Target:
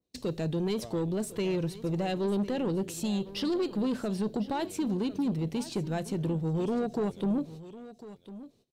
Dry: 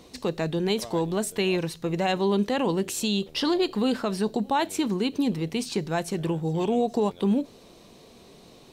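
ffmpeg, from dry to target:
ffmpeg -i in.wav -filter_complex "[0:a]agate=range=-32dB:threshold=-43dB:ratio=16:detection=peak,equalizer=frequency=125:width_type=o:width=1:gain=4,equalizer=frequency=1000:width_type=o:width=1:gain=-7,equalizer=frequency=2000:width_type=o:width=1:gain=-4,asoftclip=type=tanh:threshold=-22.5dB,asplit=2[link_01][link_02];[link_02]aecho=0:1:1051:0.158[link_03];[link_01][link_03]amix=inputs=2:normalize=0,adynamicequalizer=threshold=0.00355:dfrequency=2700:dqfactor=0.7:tfrequency=2700:tqfactor=0.7:attack=5:release=100:ratio=0.375:range=3.5:mode=cutabove:tftype=highshelf,volume=-1.5dB" out.wav

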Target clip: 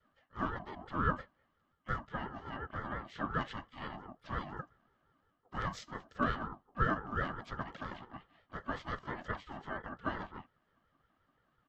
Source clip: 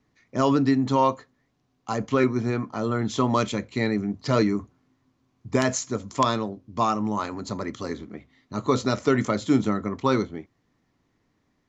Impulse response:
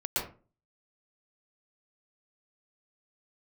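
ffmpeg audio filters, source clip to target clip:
-filter_complex "[0:a]areverse,acompressor=threshold=-34dB:ratio=4,areverse,adynamicequalizer=threshold=0.00708:dfrequency=210:dqfactor=1.1:tfrequency=210:tqfactor=1.1:attack=5:release=100:ratio=0.375:range=1.5:mode=cutabove:tftype=bell,asplit=4[link_01][link_02][link_03][link_04];[link_02]asetrate=29433,aresample=44100,atempo=1.49831,volume=-1dB[link_05];[link_03]asetrate=37084,aresample=44100,atempo=1.18921,volume=-2dB[link_06];[link_04]asetrate=88200,aresample=44100,atempo=0.5,volume=-15dB[link_07];[link_01][link_05][link_06][link_07]amix=inputs=4:normalize=0,asplit=3[link_08][link_09][link_10];[link_08]bandpass=frequency=730:width_type=q:width=8,volume=0dB[link_11];[link_09]bandpass=frequency=1090:width_type=q:width=8,volume=-6dB[link_12];[link_10]bandpass=frequency=2440:width_type=q:width=8,volume=-9dB[link_13];[link_11][link_12][link_13]amix=inputs=3:normalize=0,aeval=exprs='val(0)*sin(2*PI*550*n/s+550*0.2/5.7*sin(2*PI*5.7*n/s))':channel_layout=same,volume=10dB"

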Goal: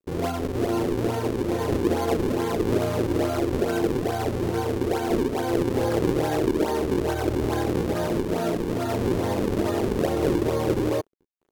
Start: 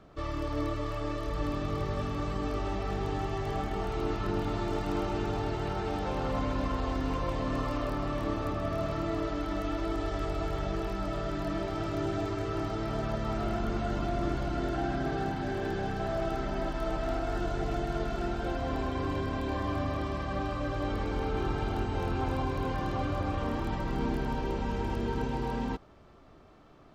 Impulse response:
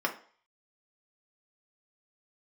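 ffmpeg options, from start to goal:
-filter_complex "[0:a]asplit=2[link_01][link_02];[link_02]acrusher=bits=6:mix=0:aa=0.000001,volume=-8dB[link_03];[link_01][link_03]amix=inputs=2:normalize=0,equalizer=frequency=100:width_type=o:width=0.67:gain=-5,equalizer=frequency=1000:width_type=o:width=0.67:gain=-12,equalizer=frequency=4000:width_type=o:width=0.67:gain=-7,aresample=16000,acrusher=samples=33:mix=1:aa=0.000001:lfo=1:lforange=52.8:lforate=1,aresample=44100,asetrate=103194,aresample=44100,aeval=exprs='sgn(val(0))*max(abs(val(0))-0.00266,0)':channel_layout=same,equalizer=frequency=380:width=1.1:gain=14.5"

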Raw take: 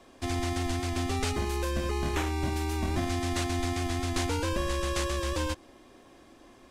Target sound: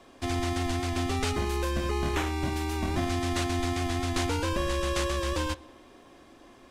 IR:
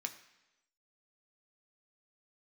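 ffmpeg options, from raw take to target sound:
-filter_complex "[0:a]asplit=2[link_01][link_02];[link_02]lowpass=6500[link_03];[1:a]atrim=start_sample=2205,asetrate=24696,aresample=44100[link_04];[link_03][link_04]afir=irnorm=-1:irlink=0,volume=-13.5dB[link_05];[link_01][link_05]amix=inputs=2:normalize=0"

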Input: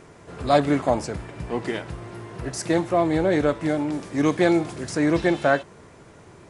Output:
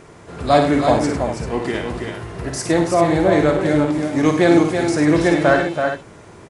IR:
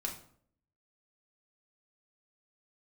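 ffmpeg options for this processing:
-af "aecho=1:1:53|101|316|329|391:0.447|0.316|0.15|0.473|0.316,volume=4dB"

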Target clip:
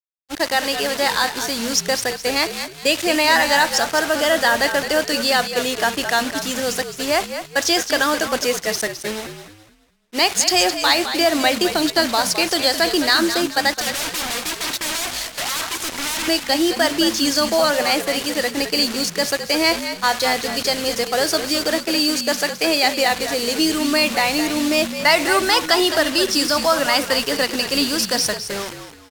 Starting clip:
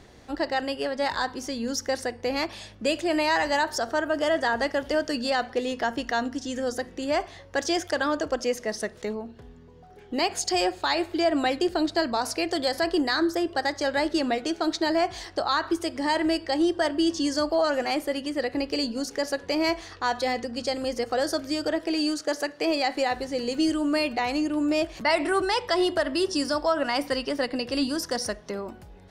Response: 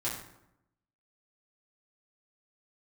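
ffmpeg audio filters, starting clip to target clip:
-filter_complex "[0:a]acrusher=bits=5:mix=0:aa=0.000001,asettb=1/sr,asplit=3[link_01][link_02][link_03];[link_01]atrim=end=13.794[link_04];[link_02]atrim=start=13.79:end=16.28,asetpts=PTS-STARTPTS,afade=type=in:duration=0.004:curve=qsin,afade=type=out:start_time=2.486:duration=0.004:curve=qsin,aeval=exprs='(mod(28.2*val(0)+1,2)-1)/28.2':channel_layout=same[link_05];[link_03]atrim=start=16.276[link_06];[link_04][link_05]acrossfade=duration=0.004:curve1=hsin:curve2=qsin[link_07];[link_07][link_06]acrossfade=duration=0.004:curve1=qsin:curve2=hsin,crystalizer=i=10:c=0,agate=range=-33dB:threshold=-19dB:ratio=3:detection=peak,aemphasis=mode=reproduction:type=75fm,asplit=5[link_08][link_09][link_10][link_11][link_12];[link_09]adelay=212,afreqshift=-59,volume=-9.5dB[link_13];[link_10]adelay=424,afreqshift=-118,volume=-19.4dB[link_14];[link_11]adelay=636,afreqshift=-177,volume=-29.3dB[link_15];[link_12]adelay=848,afreqshift=-236,volume=-39.2dB[link_16];[link_08][link_13][link_14][link_15][link_16]amix=inputs=5:normalize=0,volume=2dB"

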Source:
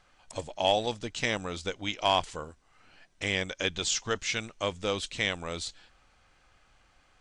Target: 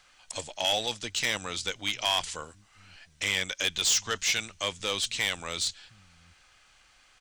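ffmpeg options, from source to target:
ffmpeg -i in.wav -filter_complex "[0:a]tiltshelf=frequency=1300:gain=-7.5,acrossover=split=180[link_01][link_02];[link_01]aecho=1:1:721:0.316[link_03];[link_02]asoftclip=type=tanh:threshold=-21.5dB[link_04];[link_03][link_04]amix=inputs=2:normalize=0,volume=2.5dB" out.wav

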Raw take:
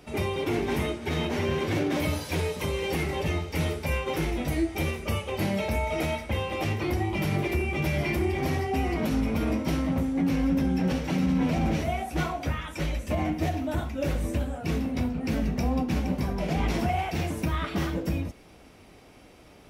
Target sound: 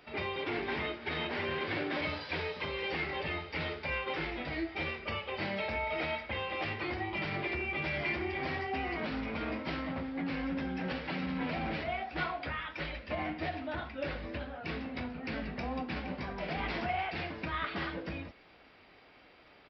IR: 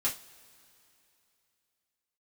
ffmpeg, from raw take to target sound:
-af "equalizer=frequency=1700:width_type=o:width=1:gain=5,aresample=11025,aresample=44100,lowshelf=frequency=340:gain=-11.5,volume=-4dB"

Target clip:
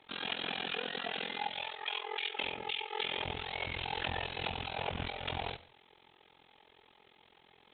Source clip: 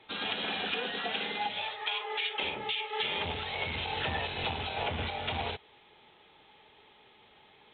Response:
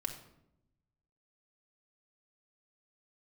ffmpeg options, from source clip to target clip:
-filter_complex "[0:a]tremolo=f=43:d=0.974,asplit=2[link_01][link_02];[1:a]atrim=start_sample=2205,atrim=end_sample=3087,adelay=97[link_03];[link_02][link_03]afir=irnorm=-1:irlink=0,volume=-18.5dB[link_04];[link_01][link_04]amix=inputs=2:normalize=0"

